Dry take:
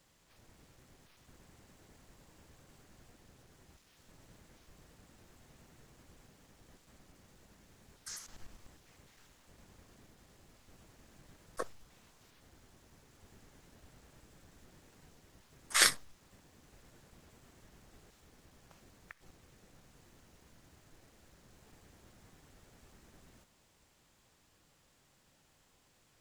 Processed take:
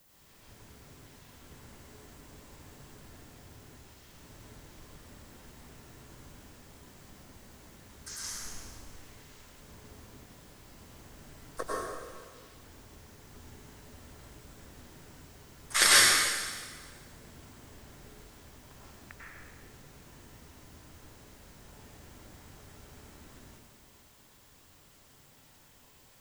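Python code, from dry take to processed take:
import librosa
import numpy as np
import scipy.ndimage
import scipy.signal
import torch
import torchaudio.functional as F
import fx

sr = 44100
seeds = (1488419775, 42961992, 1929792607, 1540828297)

y = fx.rev_plate(x, sr, seeds[0], rt60_s=1.6, hf_ratio=0.95, predelay_ms=85, drr_db=-7.0)
y = fx.dmg_noise_colour(y, sr, seeds[1], colour='violet', level_db=-66.0)
y = y * librosa.db_to_amplitude(1.0)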